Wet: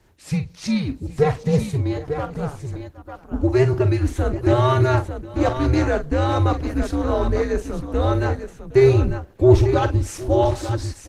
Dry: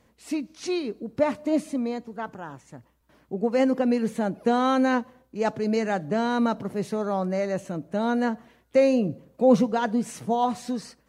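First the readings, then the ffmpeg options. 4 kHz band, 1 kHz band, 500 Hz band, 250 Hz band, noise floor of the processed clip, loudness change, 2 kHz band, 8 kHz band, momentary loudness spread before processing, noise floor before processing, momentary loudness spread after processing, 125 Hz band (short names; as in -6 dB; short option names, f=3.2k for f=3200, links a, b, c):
+4.0 dB, +2.0 dB, +5.0 dB, +1.5 dB, -47 dBFS, +5.0 dB, +3.0 dB, +4.5 dB, 12 LU, -64 dBFS, 12 LU, +18.5 dB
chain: -af "afreqshift=-140,acontrast=37,aeval=exprs='0.668*(cos(1*acos(clip(val(0)/0.668,-1,1)))-cos(1*PI/2))+0.0422*(cos(2*acos(clip(val(0)/0.668,-1,1)))-cos(2*PI/2))':c=same,aecho=1:1:45|763|897:0.299|0.119|0.376" -ar 48000 -c:a libopus -b:a 16k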